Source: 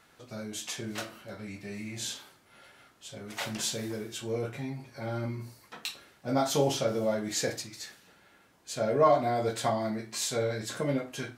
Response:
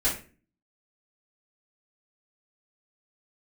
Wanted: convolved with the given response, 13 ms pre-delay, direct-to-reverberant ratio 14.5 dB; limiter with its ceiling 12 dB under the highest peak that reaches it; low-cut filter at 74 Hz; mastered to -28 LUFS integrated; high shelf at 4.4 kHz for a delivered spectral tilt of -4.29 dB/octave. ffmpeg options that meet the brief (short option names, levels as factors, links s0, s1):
-filter_complex "[0:a]highpass=74,highshelf=f=4400:g=-5.5,alimiter=level_in=1.06:limit=0.0631:level=0:latency=1,volume=0.944,asplit=2[s0][s1];[1:a]atrim=start_sample=2205,adelay=13[s2];[s1][s2]afir=irnorm=-1:irlink=0,volume=0.0596[s3];[s0][s3]amix=inputs=2:normalize=0,volume=2.51"